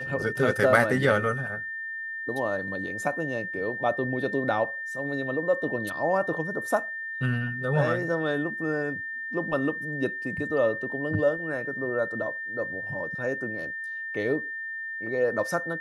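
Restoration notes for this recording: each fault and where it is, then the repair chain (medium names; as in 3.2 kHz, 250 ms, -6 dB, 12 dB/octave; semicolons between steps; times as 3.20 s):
whine 1.8 kHz -32 dBFS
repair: band-stop 1.8 kHz, Q 30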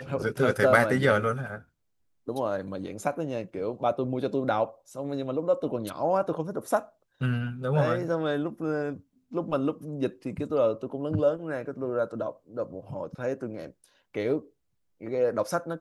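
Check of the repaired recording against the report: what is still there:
nothing left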